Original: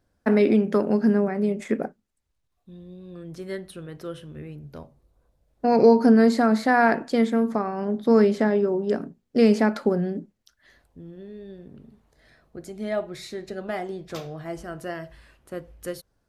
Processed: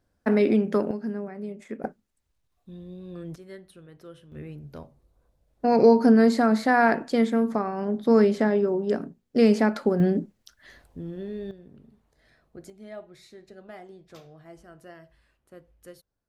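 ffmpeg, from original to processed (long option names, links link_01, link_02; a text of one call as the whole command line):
ffmpeg -i in.wav -af "asetnsamples=nb_out_samples=441:pad=0,asendcmd='0.91 volume volume -11.5dB;1.84 volume volume 1.5dB;3.36 volume volume -10.5dB;4.32 volume volume -1dB;10 volume volume 6dB;11.51 volume volume -5dB;12.7 volume volume -13.5dB',volume=-2dB" out.wav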